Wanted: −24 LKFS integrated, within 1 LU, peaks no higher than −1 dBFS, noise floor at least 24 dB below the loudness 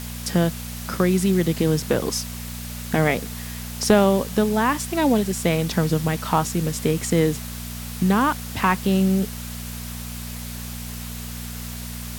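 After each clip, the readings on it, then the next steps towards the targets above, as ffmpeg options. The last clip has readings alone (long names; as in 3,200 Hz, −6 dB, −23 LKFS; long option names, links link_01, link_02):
mains hum 60 Hz; hum harmonics up to 240 Hz; level of the hum −32 dBFS; background noise floor −33 dBFS; target noise floor −47 dBFS; integrated loudness −23.0 LKFS; sample peak −5.5 dBFS; target loudness −24.0 LKFS
→ -af "bandreject=frequency=60:width_type=h:width=4,bandreject=frequency=120:width_type=h:width=4,bandreject=frequency=180:width_type=h:width=4,bandreject=frequency=240:width_type=h:width=4"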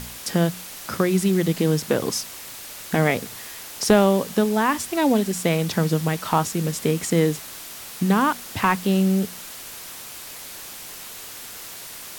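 mains hum none found; background noise floor −38 dBFS; target noise floor −46 dBFS
→ -af "afftdn=noise_reduction=8:noise_floor=-38"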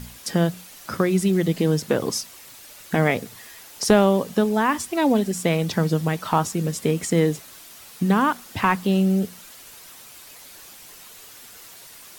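background noise floor −45 dBFS; target noise floor −46 dBFS
→ -af "afftdn=noise_reduction=6:noise_floor=-45"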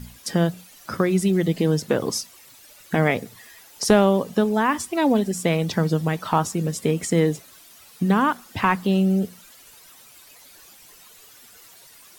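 background noise floor −49 dBFS; integrated loudness −22.0 LKFS; sample peak −6.0 dBFS; target loudness −24.0 LKFS
→ -af "volume=-2dB"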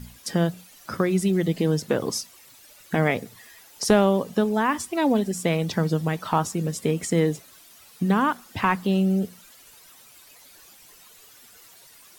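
integrated loudness −24.0 LKFS; sample peak −8.0 dBFS; background noise floor −51 dBFS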